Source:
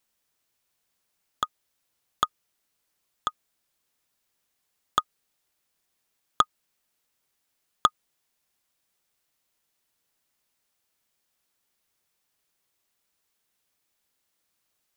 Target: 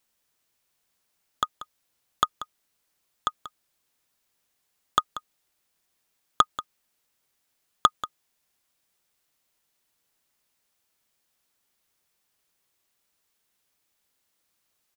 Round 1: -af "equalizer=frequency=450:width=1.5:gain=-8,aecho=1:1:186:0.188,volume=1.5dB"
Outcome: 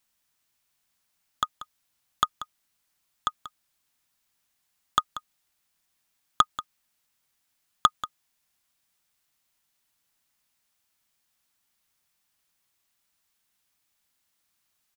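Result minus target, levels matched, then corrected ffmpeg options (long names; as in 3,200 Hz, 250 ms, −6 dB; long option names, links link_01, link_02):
500 Hz band −4.5 dB
-af "aecho=1:1:186:0.188,volume=1.5dB"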